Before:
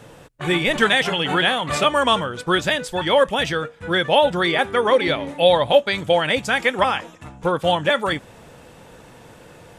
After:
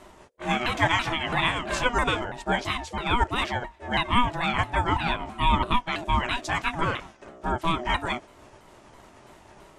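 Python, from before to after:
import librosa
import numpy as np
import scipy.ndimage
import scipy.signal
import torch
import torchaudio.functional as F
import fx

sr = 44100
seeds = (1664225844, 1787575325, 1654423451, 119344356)

y = fx.pitch_ramps(x, sr, semitones=-5.0, every_ms=331)
y = y * np.sin(2.0 * np.pi * 490.0 * np.arange(len(y)) / sr)
y = y * librosa.db_to_amplitude(-2.0)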